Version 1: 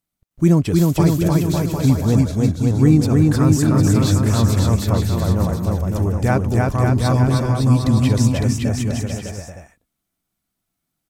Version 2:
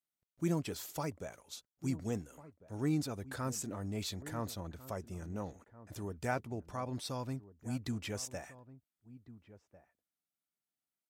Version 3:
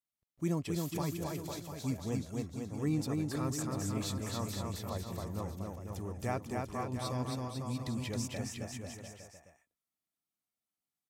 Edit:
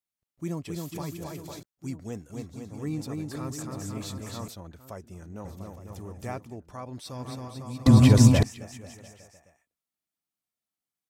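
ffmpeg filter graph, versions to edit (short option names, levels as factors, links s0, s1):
-filter_complex "[1:a]asplit=3[s0][s1][s2];[2:a]asplit=5[s3][s4][s5][s6][s7];[s3]atrim=end=1.632[s8];[s0]atrim=start=1.628:end=2.302[s9];[s4]atrim=start=2.298:end=4.482[s10];[s1]atrim=start=4.478:end=5.452[s11];[s5]atrim=start=5.448:end=6.57[s12];[s2]atrim=start=6.33:end=7.29[s13];[s6]atrim=start=7.05:end=7.862[s14];[0:a]atrim=start=7.858:end=8.432[s15];[s7]atrim=start=8.428[s16];[s8][s9]acrossfade=d=0.004:c1=hsin:c2=hsin[s17];[s17][s10]acrossfade=d=0.004:c1=hsin:c2=hsin[s18];[s18][s11]acrossfade=d=0.004:c1=hsin:c2=hsin[s19];[s19][s12]acrossfade=d=0.004:c1=hsin:c2=hsin[s20];[s20][s13]acrossfade=d=0.24:c1=tri:c2=tri[s21];[s21][s14]acrossfade=d=0.24:c1=tri:c2=tri[s22];[s22][s15]acrossfade=d=0.004:c1=hsin:c2=hsin[s23];[s23][s16]acrossfade=d=0.004:c1=hsin:c2=hsin"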